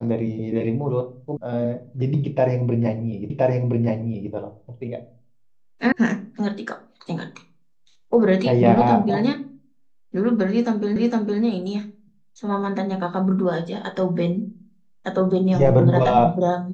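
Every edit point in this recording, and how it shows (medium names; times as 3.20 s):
1.37 s: sound stops dead
3.30 s: repeat of the last 1.02 s
5.92 s: sound stops dead
10.96 s: repeat of the last 0.46 s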